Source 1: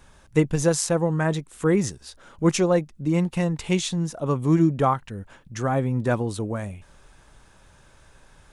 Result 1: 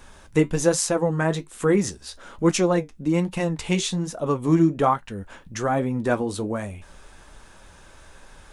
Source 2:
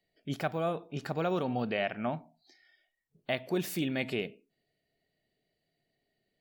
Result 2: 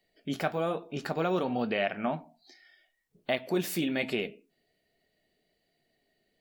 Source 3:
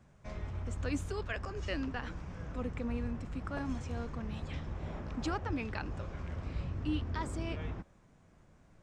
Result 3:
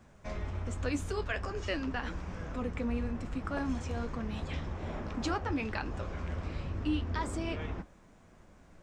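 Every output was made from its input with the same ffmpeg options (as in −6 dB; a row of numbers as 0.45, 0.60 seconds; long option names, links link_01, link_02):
-filter_complex "[0:a]equalizer=frequency=120:width=2.1:gain=-8.5,asplit=2[link_01][link_02];[link_02]acompressor=threshold=-40dB:ratio=6,volume=-2dB[link_03];[link_01][link_03]amix=inputs=2:normalize=0,flanger=delay=7.8:depth=4.6:regen=-59:speed=1.2:shape=triangular,volume=5dB"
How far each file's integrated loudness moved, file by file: +0.5, +2.0, +2.5 LU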